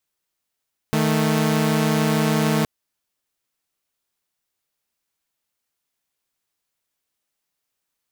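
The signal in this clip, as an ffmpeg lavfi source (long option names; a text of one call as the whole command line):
ffmpeg -f lavfi -i "aevalsrc='0.133*((2*mod(155.56*t,1)-1)+(2*mod(220*t,1)-1))':duration=1.72:sample_rate=44100" out.wav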